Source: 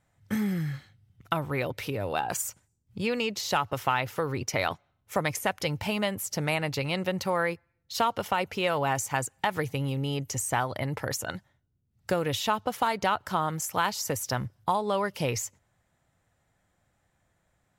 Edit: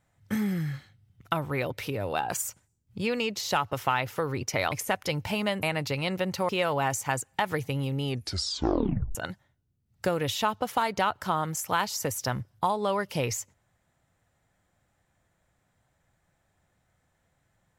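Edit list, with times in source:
4.72–5.28 s: delete
6.19–6.50 s: delete
7.36–8.54 s: delete
10.10 s: tape stop 1.10 s

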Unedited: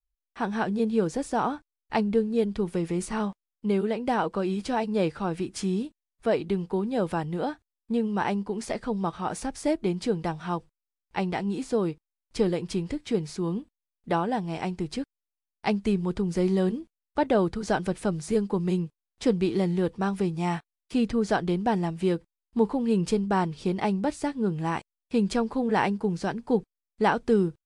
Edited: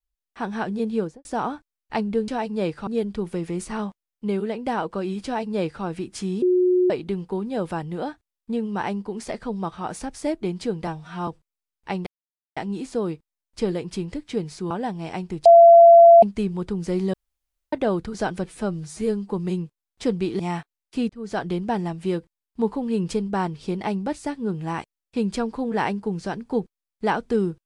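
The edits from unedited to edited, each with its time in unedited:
0.96–1.25 s: studio fade out
4.66–5.25 s: copy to 2.28 s
5.83–6.31 s: bleep 363 Hz -15 dBFS
10.28–10.55 s: stretch 1.5×
11.34 s: insert silence 0.50 s
13.48–14.19 s: delete
14.94–15.71 s: bleep 679 Hz -6 dBFS
16.62–17.21 s: room tone
17.94–18.50 s: stretch 1.5×
19.60–20.37 s: delete
21.07–21.42 s: fade in

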